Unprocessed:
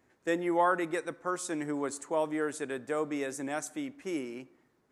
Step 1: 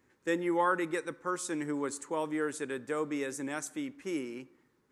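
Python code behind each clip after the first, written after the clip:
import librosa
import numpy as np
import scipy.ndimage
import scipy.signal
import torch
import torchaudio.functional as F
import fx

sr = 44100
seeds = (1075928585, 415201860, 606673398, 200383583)

y = fx.peak_eq(x, sr, hz=680.0, db=-14.0, octaves=0.26)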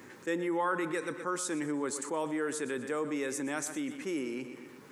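y = scipy.signal.sosfilt(scipy.signal.butter(2, 130.0, 'highpass', fs=sr, output='sos'), x)
y = fx.echo_feedback(y, sr, ms=122, feedback_pct=42, wet_db=-16)
y = fx.env_flatten(y, sr, amount_pct=50)
y = F.gain(torch.from_numpy(y), -3.5).numpy()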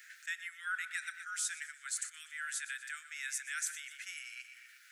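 y = scipy.signal.sosfilt(scipy.signal.butter(16, 1400.0, 'highpass', fs=sr, output='sos'), x)
y = F.gain(torch.from_numpy(y), 1.0).numpy()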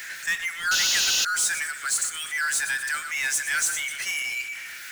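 y = fx.noise_reduce_blind(x, sr, reduce_db=8)
y = fx.spec_paint(y, sr, seeds[0], shape='noise', start_s=0.71, length_s=0.54, low_hz=2500.0, high_hz=7100.0, level_db=-35.0)
y = fx.power_curve(y, sr, exponent=0.5)
y = F.gain(torch.from_numpy(y), 7.0).numpy()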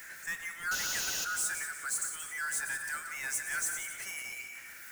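y = fx.peak_eq(x, sr, hz=3500.0, db=-13.5, octaves=1.9)
y = fx.echo_feedback(y, sr, ms=179, feedback_pct=39, wet_db=-10)
y = F.gain(torch.from_numpy(y), -4.0).numpy()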